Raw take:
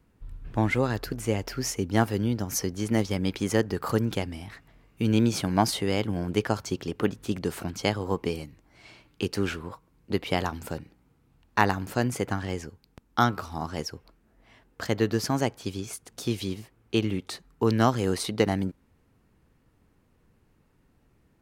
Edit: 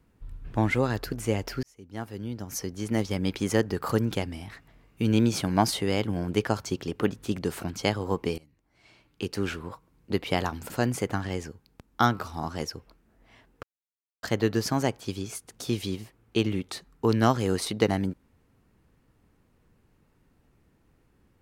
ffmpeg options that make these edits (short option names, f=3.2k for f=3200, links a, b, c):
-filter_complex "[0:a]asplit=5[a][b][c][d][e];[a]atrim=end=1.63,asetpts=PTS-STARTPTS,afade=t=out:st=1.626:d=0.004:c=hsin[f];[b]atrim=start=1.63:end=8.38,asetpts=PTS-STARTPTS,afade=t=in:d=1.69,afade=t=out:st=6.746:d=0.004:c=hsin:silence=0.0891251[g];[c]atrim=start=8.38:end=10.702,asetpts=PTS-STARTPTS,afade=t=in:d=1.31:silence=0.0891251[h];[d]atrim=start=11.878:end=14.81,asetpts=PTS-STARTPTS,afade=t=out:st=2.928:d=0.004:c=hsin,apad=pad_dur=0.6[i];[e]atrim=start=14.81,asetpts=PTS-STARTPTS,afade=t=in:d=0.004:c=hsin[j];[f][g][h]concat=n=3:v=0:a=1[k];[i][j]concat=n=2:v=0:a=1[l];[k][l]acrossfade=d=0.004:c1=hsin:c2=hsin"